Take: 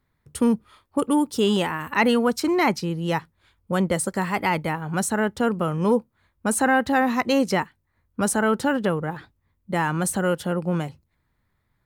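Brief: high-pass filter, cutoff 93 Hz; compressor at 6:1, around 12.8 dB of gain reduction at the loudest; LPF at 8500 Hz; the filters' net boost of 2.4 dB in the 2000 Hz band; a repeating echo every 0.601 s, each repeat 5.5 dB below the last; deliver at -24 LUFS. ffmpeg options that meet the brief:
-af "highpass=93,lowpass=8.5k,equalizer=f=2k:t=o:g=3,acompressor=threshold=-29dB:ratio=6,aecho=1:1:601|1202|1803|2404|3005|3606|4207:0.531|0.281|0.149|0.079|0.0419|0.0222|0.0118,volume=8.5dB"

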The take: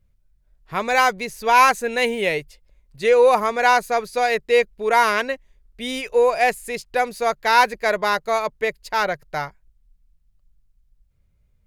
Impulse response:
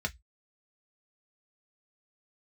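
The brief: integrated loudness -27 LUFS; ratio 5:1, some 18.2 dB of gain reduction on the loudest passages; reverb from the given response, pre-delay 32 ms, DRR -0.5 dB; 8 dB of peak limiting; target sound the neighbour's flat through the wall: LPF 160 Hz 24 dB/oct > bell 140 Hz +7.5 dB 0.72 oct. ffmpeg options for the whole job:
-filter_complex "[0:a]acompressor=threshold=-32dB:ratio=5,alimiter=level_in=3dB:limit=-24dB:level=0:latency=1,volume=-3dB,asplit=2[a][b];[1:a]atrim=start_sample=2205,adelay=32[c];[b][c]afir=irnorm=-1:irlink=0,volume=-4dB[d];[a][d]amix=inputs=2:normalize=0,lowpass=f=160:w=0.5412,lowpass=f=160:w=1.3066,equalizer=f=140:t=o:w=0.72:g=7.5,volume=23dB"

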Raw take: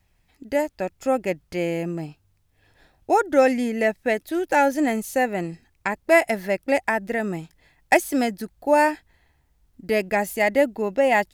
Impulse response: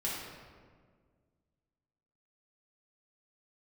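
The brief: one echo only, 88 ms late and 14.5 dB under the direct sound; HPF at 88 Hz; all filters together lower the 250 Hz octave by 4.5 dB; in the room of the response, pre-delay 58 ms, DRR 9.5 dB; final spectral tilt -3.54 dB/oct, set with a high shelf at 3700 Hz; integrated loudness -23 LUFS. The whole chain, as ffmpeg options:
-filter_complex "[0:a]highpass=88,equalizer=f=250:t=o:g=-5.5,highshelf=f=3.7k:g=-4,aecho=1:1:88:0.188,asplit=2[a][b];[1:a]atrim=start_sample=2205,adelay=58[c];[b][c]afir=irnorm=-1:irlink=0,volume=-14dB[d];[a][d]amix=inputs=2:normalize=0,volume=0.5dB"

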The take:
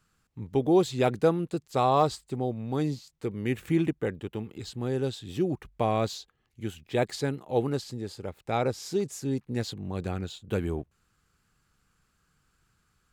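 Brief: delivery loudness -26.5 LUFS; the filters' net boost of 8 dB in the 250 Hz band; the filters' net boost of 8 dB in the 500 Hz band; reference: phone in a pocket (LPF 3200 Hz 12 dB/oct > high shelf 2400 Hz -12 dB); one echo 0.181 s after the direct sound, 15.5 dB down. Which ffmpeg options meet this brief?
-af "lowpass=3.2k,equalizer=f=250:t=o:g=8,equalizer=f=500:t=o:g=8,highshelf=f=2.4k:g=-12,aecho=1:1:181:0.168,volume=-4dB"

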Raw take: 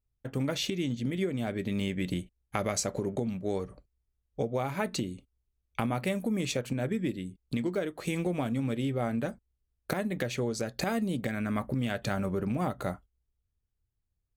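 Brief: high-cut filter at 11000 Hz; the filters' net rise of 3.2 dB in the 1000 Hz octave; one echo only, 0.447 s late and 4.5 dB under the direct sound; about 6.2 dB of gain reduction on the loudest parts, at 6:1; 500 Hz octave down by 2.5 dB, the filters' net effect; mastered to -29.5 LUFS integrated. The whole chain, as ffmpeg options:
-af "lowpass=11k,equalizer=f=500:t=o:g=-5,equalizer=f=1k:t=o:g=6.5,acompressor=threshold=-32dB:ratio=6,aecho=1:1:447:0.596,volume=7dB"

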